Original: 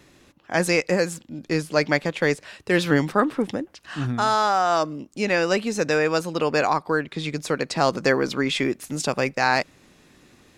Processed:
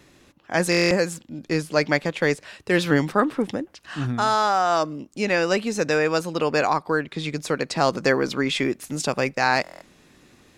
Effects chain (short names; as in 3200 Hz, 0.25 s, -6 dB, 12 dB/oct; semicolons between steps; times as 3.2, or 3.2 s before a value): stuck buffer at 0.7/9.62, samples 1024, times 8